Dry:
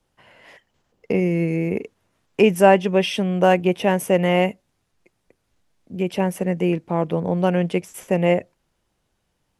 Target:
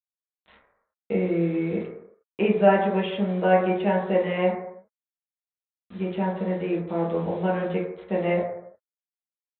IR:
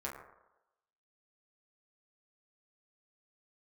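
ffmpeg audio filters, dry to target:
-filter_complex "[0:a]agate=range=-33dB:threshold=-45dB:ratio=3:detection=peak,aresample=8000,acrusher=bits=6:mix=0:aa=0.000001,aresample=44100[link_01];[1:a]atrim=start_sample=2205,afade=type=out:start_time=0.42:duration=0.01,atrim=end_sample=18963[link_02];[link_01][link_02]afir=irnorm=-1:irlink=0,volume=-6dB"

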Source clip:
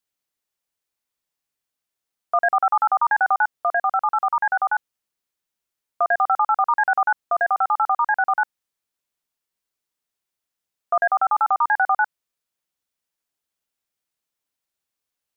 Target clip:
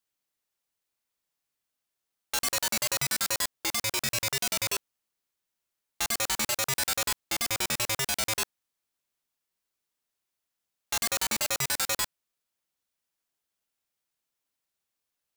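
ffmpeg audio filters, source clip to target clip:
ffmpeg -i in.wav -af "aeval=exprs='(mod(11.2*val(0)+1,2)-1)/11.2':channel_layout=same,volume=-1dB" out.wav

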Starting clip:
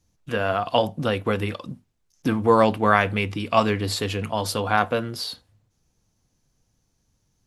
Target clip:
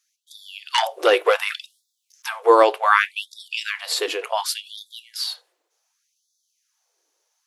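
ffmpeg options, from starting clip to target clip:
ffmpeg -i in.wav -filter_complex "[0:a]asettb=1/sr,asplit=3[link_01][link_02][link_03];[link_01]atrim=end=0.734[link_04];[link_02]atrim=start=0.73:end=2.29,asetpts=PTS-STARTPTS,afade=type=in:duration=0.004:curve=qsin,afade=type=out:start_time=1.556:duration=0.004:curve=qsin,aeval=exprs='0.531*(cos(1*acos(clip(val(0)/0.531,-1,1)))-cos(1*PI/2))+0.119*(cos(5*acos(clip(val(0)/0.531,-1,1)))-cos(5*PI/2))':channel_layout=same[link_05];[link_03]atrim=start=2.286[link_06];[link_04][link_05]acrossfade=duration=0.004:curve1=hsin:curve2=qsin[link_07];[link_07][link_06]acrossfade=duration=0.004:curve1=qsin:curve2=hsin,afftfilt=real='re*gte(b*sr/1024,300*pow(3400/300,0.5+0.5*sin(2*PI*0.67*pts/sr)))':imag='im*gte(b*sr/1024,300*pow(3400/300,0.5+0.5*sin(2*PI*0.67*pts/sr)))':win_size=1024:overlap=0.75,volume=4dB" out.wav

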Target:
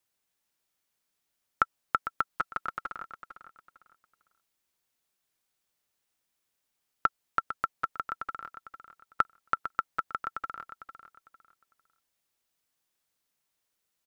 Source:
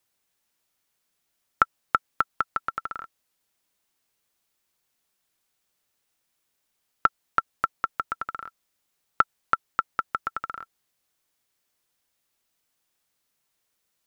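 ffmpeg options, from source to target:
ffmpeg -i in.wav -filter_complex "[0:a]asettb=1/sr,asplit=3[link_01][link_02][link_03];[link_01]atrim=end=2.304[link_04];[link_02]atrim=start=2.3:end=2.97,asetpts=PTS-STARTPTS,afade=type=in:duration=0.004:curve=qsin,afade=type=out:start_time=0.666:duration=0.004:curve=qsin,aecho=1:1:5.6:0.58,atrim=end_sample=29547[link_05];[link_03]atrim=start=2.966[link_06];[link_04][link_05]acrossfade=duration=0.004:curve1=hsin:curve2=qsin[link_07];[link_07][link_06]acrossfade=duration=0.004:curve1=qsin:curve2=hsin,aecho=1:1:452|904|1356:0.282|0.0733|0.0191,volume=-5dB" out.wav

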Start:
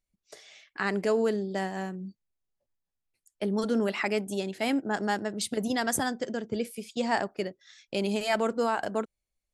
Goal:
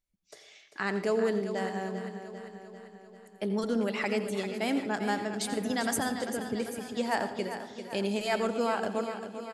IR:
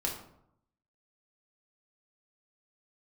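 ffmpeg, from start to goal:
-filter_complex "[0:a]aecho=1:1:395|790|1185|1580|1975|2370|2765:0.316|0.187|0.11|0.0649|0.0383|0.0226|0.0133,asplit=2[link_01][link_02];[1:a]atrim=start_sample=2205,adelay=84[link_03];[link_02][link_03]afir=irnorm=-1:irlink=0,volume=-14.5dB[link_04];[link_01][link_04]amix=inputs=2:normalize=0,volume=-2.5dB"

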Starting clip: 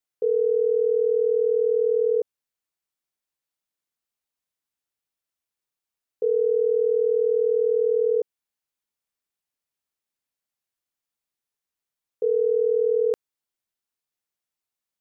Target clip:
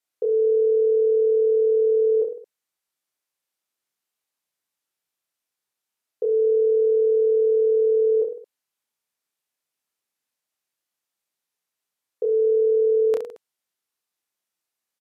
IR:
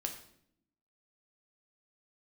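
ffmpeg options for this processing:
-filter_complex "[0:a]highpass=frequency=220:poles=1,alimiter=limit=-19dB:level=0:latency=1:release=20,asplit=2[link_01][link_02];[link_02]aecho=0:1:30|66|109.2|161|223.2:0.631|0.398|0.251|0.158|0.1[link_03];[link_01][link_03]amix=inputs=2:normalize=0,aresample=32000,aresample=44100,volume=2.5dB"

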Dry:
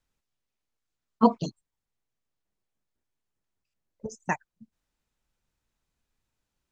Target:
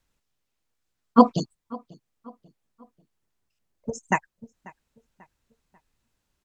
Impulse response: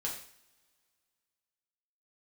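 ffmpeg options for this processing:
-filter_complex "[0:a]asplit=2[link_01][link_02];[link_02]adelay=563,lowpass=frequency=2800:poles=1,volume=-22dB,asplit=2[link_03][link_04];[link_04]adelay=563,lowpass=frequency=2800:poles=1,volume=0.42,asplit=2[link_05][link_06];[link_06]adelay=563,lowpass=frequency=2800:poles=1,volume=0.42[link_07];[link_01][link_03][link_05][link_07]amix=inputs=4:normalize=0,asetrate=45938,aresample=44100,volume=5.5dB"

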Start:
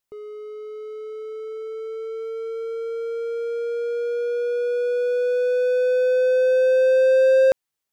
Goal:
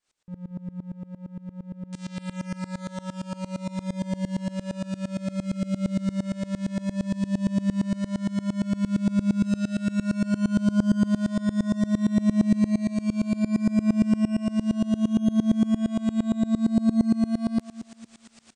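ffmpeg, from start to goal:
ffmpeg -i in.wav -filter_complex "[0:a]asplit=2[link_01][link_02];[link_02]acrusher=bits=4:mix=0:aa=0.000001,volume=-6.5dB[link_03];[link_01][link_03]amix=inputs=2:normalize=0,asetrate=18846,aresample=44100,alimiter=limit=-15.5dB:level=0:latency=1:release=87,areverse,acompressor=mode=upward:threshold=-30dB:ratio=2.5,areverse,asplit=2[link_04][link_05];[link_05]adelay=228,lowpass=frequency=2000:poles=1,volume=-12dB,asplit=2[link_06][link_07];[link_07]adelay=228,lowpass=frequency=2000:poles=1,volume=0.47,asplit=2[link_08][link_09];[link_09]adelay=228,lowpass=frequency=2000:poles=1,volume=0.47,asplit=2[link_10][link_11];[link_11]adelay=228,lowpass=frequency=2000:poles=1,volume=0.47,asplit=2[link_12][link_13];[link_13]adelay=228,lowpass=frequency=2000:poles=1,volume=0.47[link_14];[link_04][link_06][link_08][link_10][link_12][link_14]amix=inputs=6:normalize=0,aeval=exprs='val(0)*pow(10,-23*if(lt(mod(-8.7*n/s,1),2*abs(-8.7)/1000),1-mod(-8.7*n/s,1)/(2*abs(-8.7)/1000),(mod(-8.7*n/s,1)-2*abs(-8.7)/1000)/(1-2*abs(-8.7)/1000))/20)':channel_layout=same,volume=4dB" out.wav

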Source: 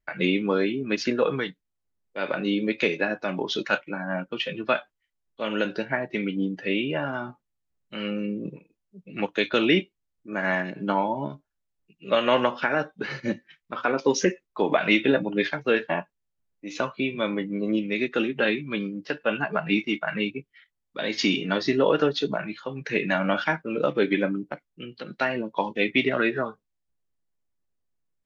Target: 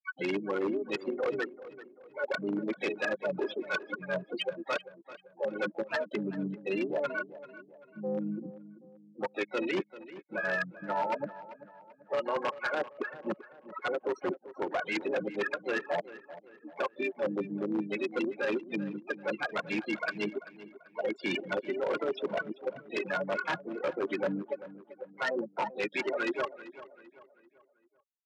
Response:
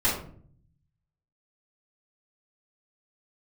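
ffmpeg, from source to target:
-filter_complex "[0:a]afftfilt=real='re*gte(hypot(re,im),0.178)':imag='im*gte(hypot(re,im),0.178)':win_size=1024:overlap=0.75,acrossover=split=380 3200:gain=0.2 1 0.112[link_01][link_02][link_03];[link_01][link_02][link_03]amix=inputs=3:normalize=0,aecho=1:1:5.5:0.53,areverse,acompressor=threshold=-32dB:ratio=16,areverse,aeval=exprs='0.0631*(cos(1*acos(clip(val(0)/0.0631,-1,1)))-cos(1*PI/2))+0.00631*(cos(3*acos(clip(val(0)/0.0631,-1,1)))-cos(3*PI/2))+0.00251*(cos(5*acos(clip(val(0)/0.0631,-1,1)))-cos(5*PI/2))+0.000794*(cos(6*acos(clip(val(0)/0.0631,-1,1)))-cos(6*PI/2))':channel_layout=same,adynamicsmooth=sensitivity=1.5:basefreq=4100,asplit=3[link_04][link_05][link_06];[link_05]asetrate=33038,aresample=44100,atempo=1.33484,volume=-12dB[link_07];[link_06]asetrate=66075,aresample=44100,atempo=0.66742,volume=-17dB[link_08];[link_04][link_07][link_08]amix=inputs=3:normalize=0,aeval=exprs='0.0299*(abs(mod(val(0)/0.0299+3,4)-2)-1)':channel_layout=same,highpass=170,lowpass=6200,asplit=2[link_09][link_10];[link_10]adelay=389,lowpass=frequency=3200:poles=1,volume=-15.5dB,asplit=2[link_11][link_12];[link_12]adelay=389,lowpass=frequency=3200:poles=1,volume=0.42,asplit=2[link_13][link_14];[link_14]adelay=389,lowpass=frequency=3200:poles=1,volume=0.42,asplit=2[link_15][link_16];[link_16]adelay=389,lowpass=frequency=3200:poles=1,volume=0.42[link_17];[link_11][link_13][link_15][link_17]amix=inputs=4:normalize=0[link_18];[link_09][link_18]amix=inputs=2:normalize=0,volume=6.5dB"

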